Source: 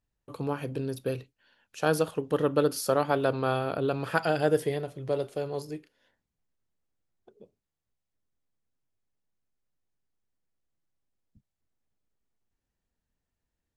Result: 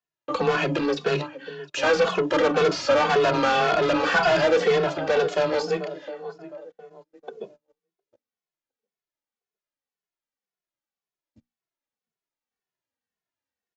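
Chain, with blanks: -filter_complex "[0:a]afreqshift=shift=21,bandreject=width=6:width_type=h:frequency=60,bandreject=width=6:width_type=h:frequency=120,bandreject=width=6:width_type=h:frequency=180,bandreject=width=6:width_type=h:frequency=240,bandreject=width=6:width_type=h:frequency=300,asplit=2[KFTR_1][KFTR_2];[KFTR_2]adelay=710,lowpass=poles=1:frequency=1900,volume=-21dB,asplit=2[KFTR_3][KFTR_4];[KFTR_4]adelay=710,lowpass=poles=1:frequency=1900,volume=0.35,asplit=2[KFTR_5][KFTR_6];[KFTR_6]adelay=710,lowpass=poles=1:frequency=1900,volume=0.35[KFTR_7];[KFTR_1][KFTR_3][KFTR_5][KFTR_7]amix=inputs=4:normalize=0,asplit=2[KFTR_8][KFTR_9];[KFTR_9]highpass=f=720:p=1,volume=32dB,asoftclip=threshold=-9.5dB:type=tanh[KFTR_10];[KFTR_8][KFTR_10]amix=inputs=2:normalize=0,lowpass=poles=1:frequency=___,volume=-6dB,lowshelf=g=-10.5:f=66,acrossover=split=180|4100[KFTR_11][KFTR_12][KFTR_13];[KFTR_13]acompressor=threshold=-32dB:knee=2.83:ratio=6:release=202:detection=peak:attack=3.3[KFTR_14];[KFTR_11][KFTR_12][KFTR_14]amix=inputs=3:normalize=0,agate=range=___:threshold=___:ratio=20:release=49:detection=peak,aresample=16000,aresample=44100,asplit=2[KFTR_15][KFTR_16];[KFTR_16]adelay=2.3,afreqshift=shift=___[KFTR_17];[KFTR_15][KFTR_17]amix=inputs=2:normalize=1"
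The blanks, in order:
4600, -23dB, -51dB, -1.9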